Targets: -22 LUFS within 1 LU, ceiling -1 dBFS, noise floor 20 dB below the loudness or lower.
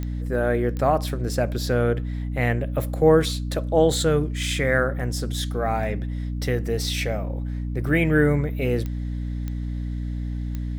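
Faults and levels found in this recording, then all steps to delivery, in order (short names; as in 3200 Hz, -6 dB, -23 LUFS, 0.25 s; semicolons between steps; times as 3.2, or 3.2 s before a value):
clicks 5; hum 60 Hz; harmonics up to 300 Hz; hum level -25 dBFS; loudness -24.0 LUFS; peak -6.0 dBFS; loudness target -22.0 LUFS
-> de-click; de-hum 60 Hz, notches 5; gain +2 dB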